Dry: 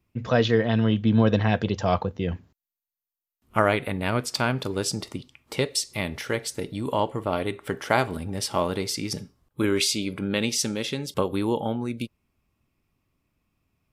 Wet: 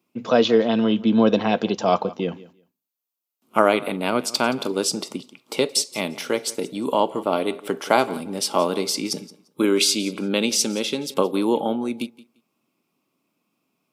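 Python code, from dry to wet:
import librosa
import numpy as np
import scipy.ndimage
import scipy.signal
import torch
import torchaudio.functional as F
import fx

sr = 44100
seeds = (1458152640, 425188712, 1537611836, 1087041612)

p1 = scipy.signal.sosfilt(scipy.signal.butter(4, 200.0, 'highpass', fs=sr, output='sos'), x)
p2 = fx.peak_eq(p1, sr, hz=1800.0, db=-10.5, octaves=0.38)
p3 = p2 + fx.echo_feedback(p2, sr, ms=173, feedback_pct=17, wet_db=-19.5, dry=0)
y = p3 * librosa.db_to_amplitude(5.0)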